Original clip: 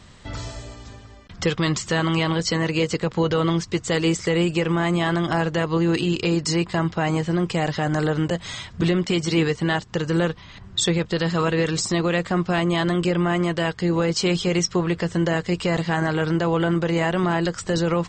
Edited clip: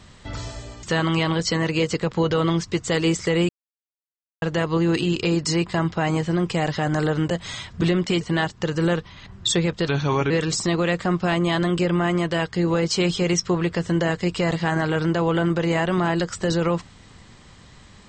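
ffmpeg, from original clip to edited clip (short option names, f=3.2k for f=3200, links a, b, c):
-filter_complex "[0:a]asplit=7[a][b][c][d][e][f][g];[a]atrim=end=0.832[h];[b]atrim=start=1.828:end=4.49,asetpts=PTS-STARTPTS,afade=t=out:st=2.658:d=0.004:c=hsin[i];[c]atrim=start=4.49:end=5.42,asetpts=PTS-STARTPTS,volume=0[j];[d]atrim=start=5.42:end=9.212,asetpts=PTS-STARTPTS,afade=t=in:d=0.004:c=hsin[k];[e]atrim=start=9.528:end=11.204[l];[f]atrim=start=11.2:end=11.56,asetpts=PTS-STARTPTS,asetrate=37485,aresample=44100[m];[g]atrim=start=11.556[n];[i][j][k]concat=n=3:v=0:a=1[o];[h][o]acrossfade=d=0.004:c1=hsin:c2=hsin[p];[p][l]acrossfade=d=0.004:c1=hsin:c2=hsin[q];[q][m]acrossfade=d=0.004:c1=hsin:c2=hsin[r];[r][n]acrossfade=d=0.004:c1=hsin:c2=hsin"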